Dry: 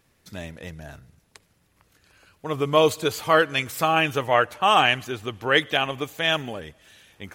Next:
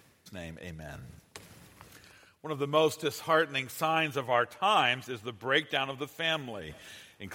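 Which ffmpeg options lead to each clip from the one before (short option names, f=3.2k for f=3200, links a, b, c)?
-af "highpass=79,areverse,acompressor=mode=upward:threshold=-28dB:ratio=2.5,areverse,volume=-7.5dB"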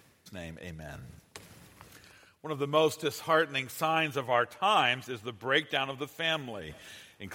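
-af anull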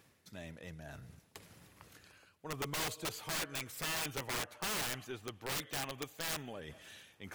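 -af "aeval=exprs='(tanh(10*val(0)+0.35)-tanh(0.35))/10':c=same,aeval=exprs='(mod(23.7*val(0)+1,2)-1)/23.7':c=same,volume=-4.5dB"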